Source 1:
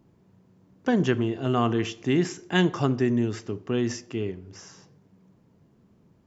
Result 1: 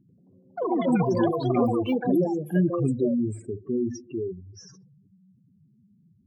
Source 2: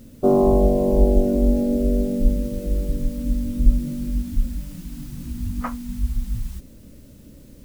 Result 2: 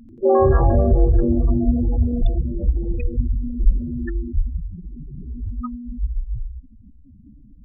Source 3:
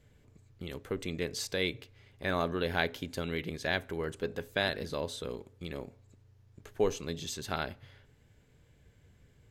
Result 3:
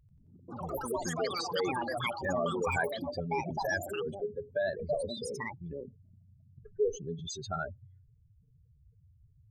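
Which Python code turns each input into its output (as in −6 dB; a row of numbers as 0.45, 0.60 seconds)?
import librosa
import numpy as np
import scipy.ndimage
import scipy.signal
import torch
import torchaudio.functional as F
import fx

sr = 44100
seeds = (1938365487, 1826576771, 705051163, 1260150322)

y = fx.spec_expand(x, sr, power=3.7)
y = fx.echo_pitch(y, sr, ms=89, semitones=6, count=3, db_per_echo=-3.0)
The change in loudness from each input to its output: +0.5, +1.0, +0.5 LU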